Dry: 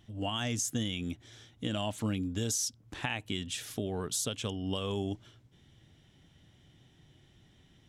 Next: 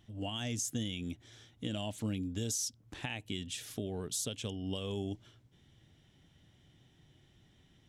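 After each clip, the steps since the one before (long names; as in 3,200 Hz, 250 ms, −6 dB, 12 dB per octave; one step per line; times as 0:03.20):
dynamic equaliser 1,200 Hz, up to −8 dB, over −53 dBFS, Q 1.2
level −3 dB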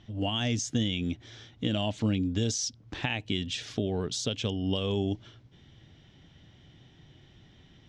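low-pass filter 5,700 Hz 24 dB per octave
level +8.5 dB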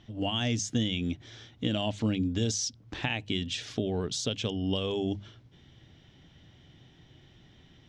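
mains-hum notches 50/100/150/200 Hz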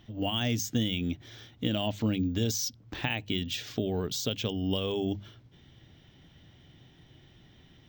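bad sample-rate conversion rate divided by 2×, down filtered, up hold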